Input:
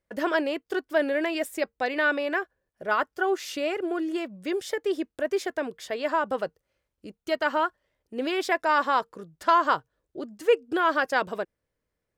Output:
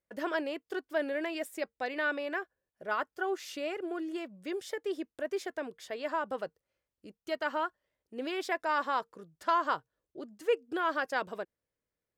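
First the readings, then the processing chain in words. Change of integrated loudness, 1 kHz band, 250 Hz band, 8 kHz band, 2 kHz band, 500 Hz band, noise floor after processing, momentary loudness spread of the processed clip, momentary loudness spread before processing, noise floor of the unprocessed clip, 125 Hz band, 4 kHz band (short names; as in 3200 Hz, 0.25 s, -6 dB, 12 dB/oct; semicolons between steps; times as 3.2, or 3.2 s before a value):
-7.5 dB, -7.5 dB, -8.0 dB, -7.5 dB, -7.5 dB, -7.5 dB, under -85 dBFS, 11 LU, 10 LU, -83 dBFS, n/a, -7.5 dB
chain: low shelf 66 Hz -8 dB; gain -7.5 dB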